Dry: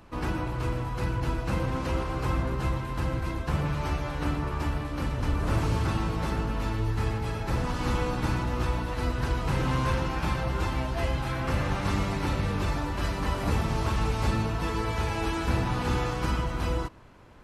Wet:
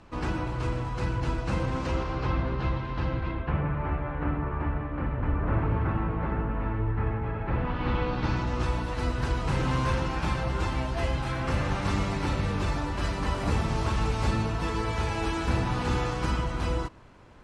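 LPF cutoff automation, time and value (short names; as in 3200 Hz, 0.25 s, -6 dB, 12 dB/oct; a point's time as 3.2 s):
LPF 24 dB/oct
1.81 s 8500 Hz
2.34 s 4600 Hz
3.08 s 4600 Hz
3.7 s 2100 Hz
7.32 s 2100 Hz
8.09 s 4100 Hz
8.71 s 9700 Hz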